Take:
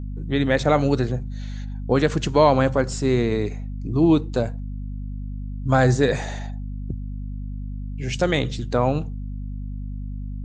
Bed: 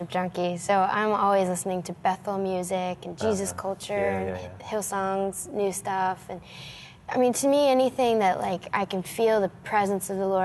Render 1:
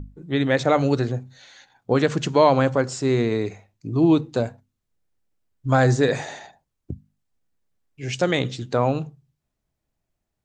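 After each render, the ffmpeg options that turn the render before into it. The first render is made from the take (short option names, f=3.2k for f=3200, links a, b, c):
-af "bandreject=f=50:t=h:w=6,bandreject=f=100:t=h:w=6,bandreject=f=150:t=h:w=6,bandreject=f=200:t=h:w=6,bandreject=f=250:t=h:w=6"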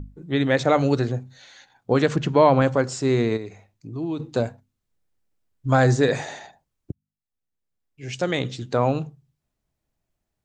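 -filter_complex "[0:a]asettb=1/sr,asplit=3[a][b][c];[a]atrim=end=2.164[d];[b]atrim=start=2.16:end=2.62,asetpts=PTS-STARTPTS,afade=t=in:d=0.004:c=qsin,afade=t=out:st=0.456:d=0.004:c=qsin,bass=f=250:g=3,treble=f=4k:g=-12[e];[c]atrim=start=2.616[f];[d][e]acrossfade=d=0.004:c1=hsin:c2=qsin[g];[g][f]acrossfade=d=0.004:c1=qsin:c2=hsin,asplit=3[h][i][j];[h]afade=t=out:st=3.36:d=0.02[k];[i]acompressor=threshold=-45dB:ratio=1.5:attack=3.2:release=140:knee=1:detection=peak,afade=t=in:st=3.36:d=0.02,afade=t=out:st=4.19:d=0.02[l];[j]afade=t=in:st=4.19:d=0.02[m];[k][l][m]amix=inputs=3:normalize=0,asplit=2[n][o];[n]atrim=end=6.92,asetpts=PTS-STARTPTS,afade=t=out:st=6.916:d=0.004:c=hsin[p];[o]atrim=start=6.92,asetpts=PTS-STARTPTS,afade=t=in:d=1.93[q];[p][q]concat=n=2:v=0:a=1"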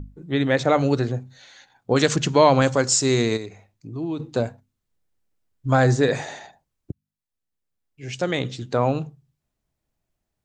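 -filter_complex "[0:a]asettb=1/sr,asplit=3[a][b][c];[a]atrim=end=1.964[d];[b]atrim=start=1.96:end=3.46,asetpts=PTS-STARTPTS,afade=t=in:d=0.004:c=qsin,afade=t=out:st=1.496:d=0.004:c=qsin,equalizer=f=6.9k:t=o:w=1.9:g=15[e];[c]atrim=start=3.456[f];[d][e]acrossfade=d=0.004:c1=hsin:c2=qsin[g];[g][f]acrossfade=d=0.004:c1=qsin:c2=hsin"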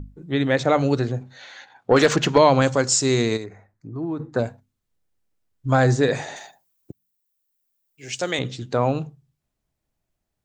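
-filter_complex "[0:a]asettb=1/sr,asplit=3[a][b][c];[a]atrim=end=1.214[d];[b]atrim=start=1.21:end=2.38,asetpts=PTS-STARTPTS,afade=t=in:d=0.004:c=qsin,afade=t=out:st=1.166:d=0.004:c=qsin,asplit=2[e][f];[f]highpass=f=720:p=1,volume=17dB,asoftclip=type=tanh:threshold=-2.5dB[g];[e][g]amix=inputs=2:normalize=0,lowpass=f=1.6k:p=1,volume=-6dB[h];[c]atrim=start=2.376[i];[d][h]acrossfade=d=0.004:c1=hsin:c2=qsin[j];[j][i]acrossfade=d=0.004:c1=qsin:c2=hsin,asettb=1/sr,asplit=3[k][l][m];[k]atrim=end=3.444[n];[l]atrim=start=3.44:end=4.39,asetpts=PTS-STARTPTS,afade=t=in:d=0.004:c=qsin,afade=t=out:st=0.946:d=0.004:c=qsin,highshelf=f=2.2k:t=q:w=3:g=-8.5[o];[m]atrim=start=4.386[p];[n][o]acrossfade=d=0.004:c1=hsin:c2=qsin[q];[q][p]acrossfade=d=0.004:c1=qsin:c2=hsin,asettb=1/sr,asplit=3[r][s][t];[r]atrim=end=6.364[u];[s]atrim=start=6.36:end=8.39,asetpts=PTS-STARTPTS,afade=t=in:d=0.004:c=qsin,afade=t=out:st=2.026:d=0.004:c=qsin,aemphasis=mode=production:type=bsi[v];[t]atrim=start=8.386[w];[u][v]acrossfade=d=0.004:c1=hsin:c2=qsin[x];[x][w]acrossfade=d=0.004:c1=qsin:c2=hsin"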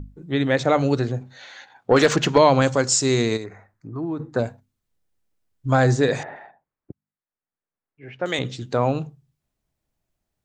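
-filter_complex "[0:a]asettb=1/sr,asplit=3[a][b][c];[a]atrim=end=3.454[d];[b]atrim=start=3.45:end=4.01,asetpts=PTS-STARTPTS,afade=t=in:d=0.004:c=qsin,afade=t=out:st=0.556:d=0.004:c=qsin,equalizer=f=1.3k:t=o:w=1.4:g=7.5[e];[c]atrim=start=4.006[f];[d][e]acrossfade=d=0.004:c1=hsin:c2=qsin[g];[g][f]acrossfade=d=0.004:c1=qsin:c2=hsin,asettb=1/sr,asplit=3[h][i][j];[h]atrim=end=6.234[k];[i]atrim=start=6.23:end=8.26,asetpts=PTS-STARTPTS,afade=t=in:d=0.004:c=qsin,afade=t=out:st=2.026:d=0.004:c=qsin,lowpass=f=1.9k:w=0.5412,lowpass=f=1.9k:w=1.3066[l];[j]atrim=start=8.256[m];[k][l]acrossfade=d=0.004:c1=hsin:c2=qsin[n];[n][m]acrossfade=d=0.004:c1=qsin:c2=hsin"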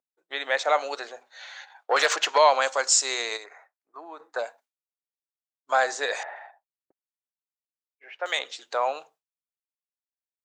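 -af "highpass=f=630:w=0.5412,highpass=f=630:w=1.3066,agate=range=-33dB:threshold=-52dB:ratio=3:detection=peak"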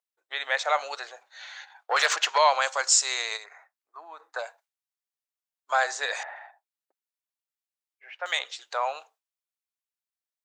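-af "highpass=720"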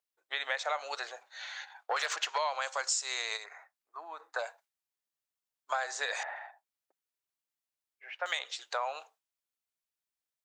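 -af "acompressor=threshold=-30dB:ratio=5"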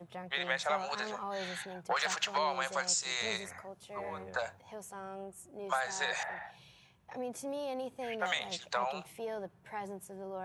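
-filter_complex "[1:a]volume=-17.5dB[a];[0:a][a]amix=inputs=2:normalize=0"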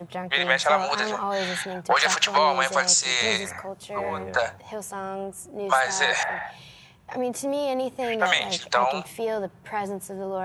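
-af "volume=12dB"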